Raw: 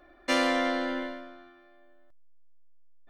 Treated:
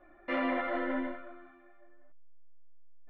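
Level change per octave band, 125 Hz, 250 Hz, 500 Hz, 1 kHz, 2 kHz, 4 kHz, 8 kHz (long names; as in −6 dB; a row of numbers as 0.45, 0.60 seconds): can't be measured, −4.0 dB, −5.0 dB, −5.0 dB, −6.0 dB, −16.0 dB, below −35 dB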